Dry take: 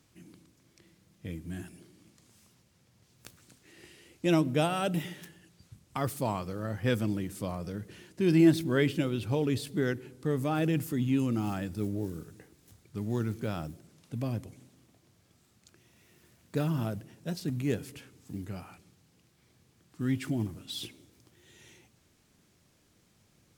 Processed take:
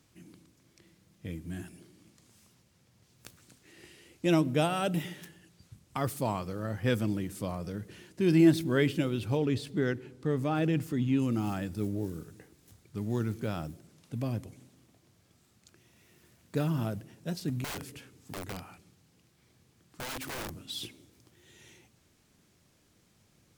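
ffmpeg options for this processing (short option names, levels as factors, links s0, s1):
-filter_complex "[0:a]asettb=1/sr,asplit=3[s0][s1][s2];[s0]atrim=end=9.374[s3];[s1]atrim=start=9.37:end=11.22,asetpts=PTS-STARTPTS,afade=t=in:d=0.004:c=qsin,afade=t=out:st=1.846:d=0.004:c=qsin,equalizer=f=13000:w=0.56:g=-10[s4];[s2]atrim=start=11.216[s5];[s3][s4]acrossfade=d=0.004:c1=hsin:c2=qsin[s6];[s6][s5]acrossfade=d=0.004:c1=qsin:c2=hsin,asettb=1/sr,asplit=3[s7][s8][s9];[s7]atrim=end=17.644[s10];[s8]atrim=start=17.64:end=20.67,asetpts=PTS-STARTPTS,afade=t=in:d=0.004:c=qsin,afade=t=out:st=3.026:d=0.004:c=qsin,aeval=exprs='(mod(44.7*val(0)+1,2)-1)/44.7':c=same[s11];[s9]atrim=start=20.666[s12];[s10][s11]acrossfade=d=0.004:c1=hsin:c2=qsin[s13];[s13][s12]acrossfade=d=0.004:c1=qsin:c2=hsin"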